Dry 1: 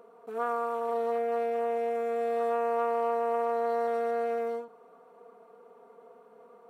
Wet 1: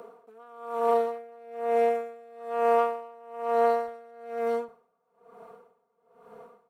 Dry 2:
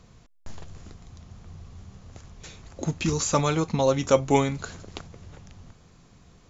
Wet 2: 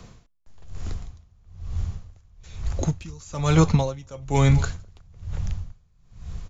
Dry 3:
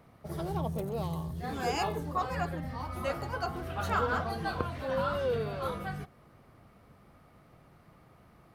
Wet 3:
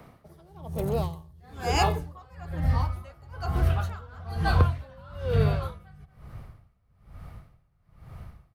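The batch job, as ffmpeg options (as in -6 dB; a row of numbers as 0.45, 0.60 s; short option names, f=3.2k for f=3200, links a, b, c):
-filter_complex "[0:a]asubboost=boost=8.5:cutoff=98,asplit=2[a][b];[b]adelay=227.4,volume=-25dB,highshelf=f=4k:g=-5.12[c];[a][c]amix=inputs=2:normalize=0,acrossover=split=130|750|4600[d][e][f][g];[f]asoftclip=type=tanh:threshold=-25.5dB[h];[d][e][h][g]amix=inputs=4:normalize=0,aeval=exprs='val(0)*pow(10,-28*(0.5-0.5*cos(2*PI*1.1*n/s))/20)':c=same,volume=9dB"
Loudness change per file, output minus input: +2.5, -0.5, +5.5 LU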